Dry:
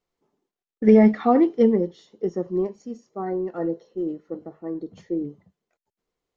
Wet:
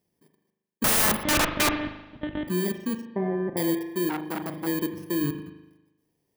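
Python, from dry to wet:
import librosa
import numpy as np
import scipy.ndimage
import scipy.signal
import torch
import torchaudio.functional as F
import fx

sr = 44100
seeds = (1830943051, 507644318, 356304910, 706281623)

y = fx.bit_reversed(x, sr, seeds[0], block=32)
y = fx.lpc_monotone(y, sr, seeds[1], pitch_hz=300.0, order=8, at=(1.23, 2.48))
y = fx.dynamic_eq(y, sr, hz=990.0, q=2.5, threshold_db=-43.0, ratio=4.0, max_db=-8)
y = fx.lowpass(y, sr, hz=1500.0, slope=24, at=(3.05, 3.57))
y = fx.peak_eq(y, sr, hz=170.0, db=8.5, octaves=1.7)
y = fx.level_steps(y, sr, step_db=17)
y = scipy.signal.sosfilt(scipy.signal.butter(2, 58.0, 'highpass', fs=sr, output='sos'), y)
y = (np.mod(10.0 ** (25.0 / 20.0) * y + 1.0, 2.0) - 1.0) / 10.0 ** (25.0 / 20.0)
y = fx.rev_spring(y, sr, rt60_s=1.0, pass_ms=(39,), chirp_ms=80, drr_db=6.5)
y = fx.transformer_sat(y, sr, knee_hz=1400.0, at=(4.09, 4.67))
y = y * librosa.db_to_amplitude(8.5)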